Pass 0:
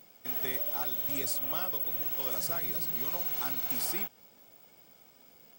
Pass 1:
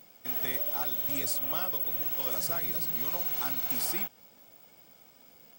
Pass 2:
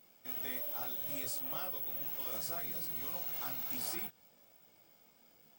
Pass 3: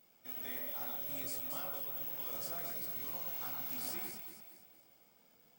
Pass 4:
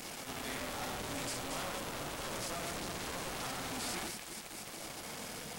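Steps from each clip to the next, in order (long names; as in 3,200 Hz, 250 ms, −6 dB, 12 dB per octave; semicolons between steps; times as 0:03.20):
notch filter 400 Hz, Q 12; level +1.5 dB
multi-voice chorus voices 2, 0.64 Hz, delay 23 ms, depth 5 ms; level −4.5 dB
delay that swaps between a low-pass and a high-pass 115 ms, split 2,300 Hz, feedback 65%, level −3 dB; level −3.5 dB
linear delta modulator 64 kbit/s, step −40.5 dBFS; level +5 dB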